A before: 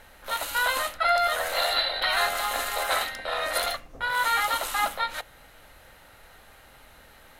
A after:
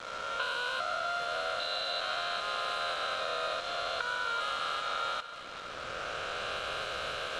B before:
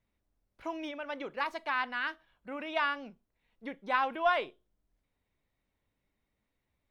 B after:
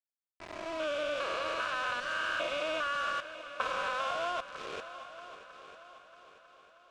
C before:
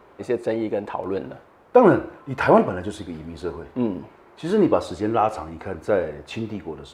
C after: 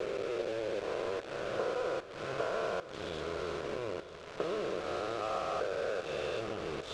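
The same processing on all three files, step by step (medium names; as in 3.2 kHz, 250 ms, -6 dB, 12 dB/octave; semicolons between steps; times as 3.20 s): spectrogram pixelated in time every 400 ms; recorder AGC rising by 16 dB/s; level-controlled noise filter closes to 1.4 kHz, open at -20.5 dBFS; static phaser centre 1.3 kHz, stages 8; compression 8:1, threshold -35 dBFS; high-pass 410 Hz 6 dB/octave; small samples zeroed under -43 dBFS; Bessel low-pass 5.4 kHz, order 4; multi-head delay 316 ms, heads second and third, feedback 49%, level -15 dB; trim +5.5 dB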